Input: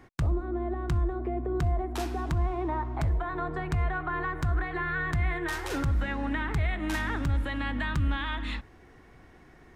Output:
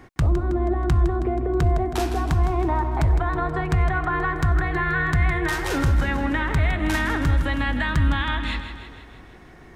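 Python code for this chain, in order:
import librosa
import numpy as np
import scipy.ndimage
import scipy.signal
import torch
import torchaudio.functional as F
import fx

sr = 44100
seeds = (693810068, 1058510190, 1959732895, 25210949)

y = fx.echo_feedback(x, sr, ms=160, feedback_pct=57, wet_db=-10)
y = F.gain(torch.from_numpy(y), 7.0).numpy()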